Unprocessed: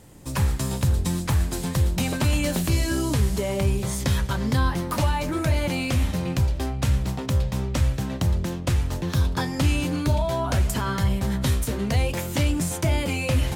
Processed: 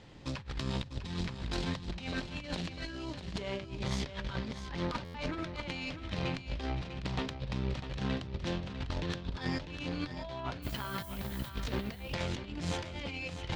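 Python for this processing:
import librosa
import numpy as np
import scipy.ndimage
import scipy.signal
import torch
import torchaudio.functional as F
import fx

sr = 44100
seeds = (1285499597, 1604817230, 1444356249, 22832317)

y = scipy.signal.sosfilt(scipy.signal.butter(4, 4200.0, 'lowpass', fs=sr, output='sos'), x)
y = fx.high_shelf(y, sr, hz=2200.0, db=10.0)
y = fx.hum_notches(y, sr, base_hz=60, count=7)
y = fx.over_compress(y, sr, threshold_db=-28.0, ratio=-0.5)
y = fx.tube_stage(y, sr, drive_db=18.0, bias=0.75)
y = fx.dmg_noise_colour(y, sr, seeds[0], colour='violet', level_db=-46.0, at=(10.62, 11.48), fade=0.02)
y = y + 10.0 ** (-10.0 / 20.0) * np.pad(y, (int(649 * sr / 1000.0), 0))[:len(y)]
y = fx.buffer_glitch(y, sr, at_s=(5.04,), block=512, repeats=8)
y = F.gain(torch.from_numpy(y), -5.0).numpy()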